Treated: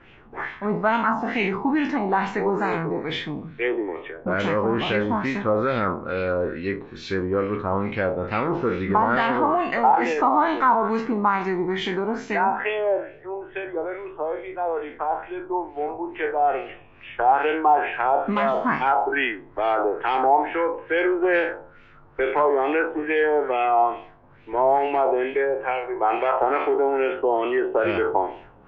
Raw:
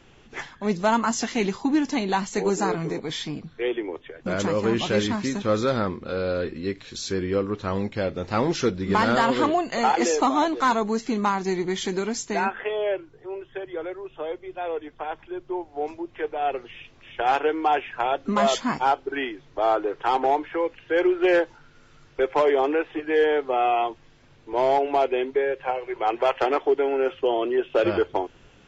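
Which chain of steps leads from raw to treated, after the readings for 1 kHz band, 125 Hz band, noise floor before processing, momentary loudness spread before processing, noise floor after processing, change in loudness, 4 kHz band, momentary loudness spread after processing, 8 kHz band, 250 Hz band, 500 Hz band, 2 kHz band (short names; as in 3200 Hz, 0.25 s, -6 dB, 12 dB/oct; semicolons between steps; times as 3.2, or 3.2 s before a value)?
+3.5 dB, 0.0 dB, -54 dBFS, 12 LU, -49 dBFS, +1.5 dB, -3.0 dB, 10 LU, n/a, 0.0 dB, +1.0 dB, +4.0 dB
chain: spectral trails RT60 0.50 s; limiter -15 dBFS, peak gain reduction 7 dB; LFO low-pass sine 2.3 Hz 880–2600 Hz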